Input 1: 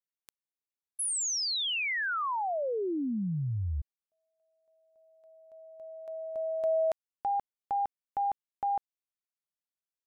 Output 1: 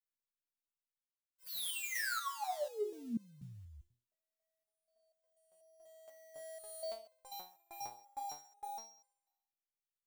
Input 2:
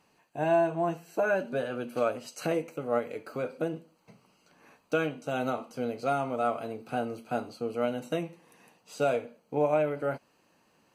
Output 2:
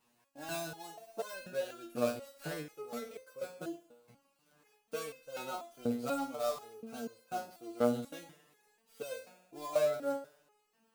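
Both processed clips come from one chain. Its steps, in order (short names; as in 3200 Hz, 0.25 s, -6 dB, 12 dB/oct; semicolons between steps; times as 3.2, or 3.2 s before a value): switching dead time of 0.085 ms; high shelf 7400 Hz +9.5 dB; thinning echo 67 ms, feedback 65%, high-pass 250 Hz, level -15.5 dB; dynamic EQ 3900 Hz, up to +6 dB, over -55 dBFS, Q 3.1; stepped resonator 4.1 Hz 120–520 Hz; gain +3.5 dB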